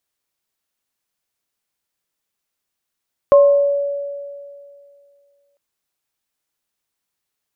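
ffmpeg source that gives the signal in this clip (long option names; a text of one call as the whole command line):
ffmpeg -f lavfi -i "aevalsrc='0.562*pow(10,-3*t/2.35)*sin(2*PI*567*t)+0.168*pow(10,-3*t/0.58)*sin(2*PI*1070*t)':duration=2.25:sample_rate=44100" out.wav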